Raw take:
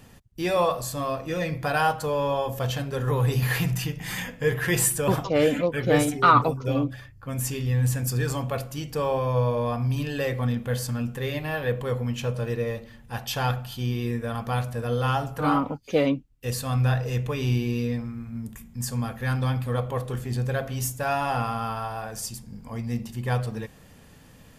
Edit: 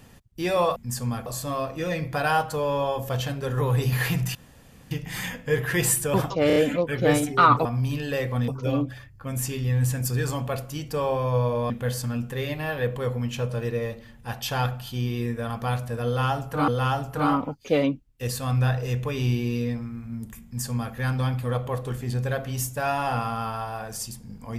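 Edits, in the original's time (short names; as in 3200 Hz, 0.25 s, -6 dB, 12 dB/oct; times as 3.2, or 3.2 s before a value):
3.85 insert room tone 0.56 s
5.41 stutter 0.03 s, 4 plays
9.72–10.55 move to 6.5
14.91–15.53 loop, 2 plays
18.67–19.17 copy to 0.76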